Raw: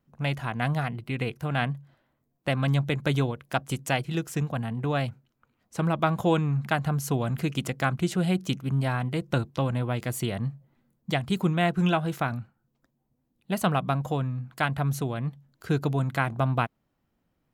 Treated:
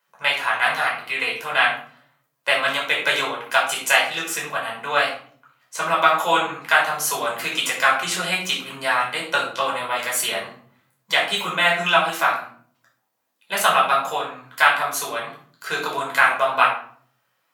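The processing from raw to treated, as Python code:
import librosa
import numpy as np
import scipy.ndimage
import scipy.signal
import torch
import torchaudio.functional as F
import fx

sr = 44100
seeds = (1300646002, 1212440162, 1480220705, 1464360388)

y = scipy.signal.sosfilt(scipy.signal.butter(2, 1100.0, 'highpass', fs=sr, output='sos'), x)
y = fx.room_shoebox(y, sr, seeds[0], volume_m3=580.0, walls='furnished', distance_m=5.0)
y = F.gain(torch.from_numpy(y), 8.0).numpy()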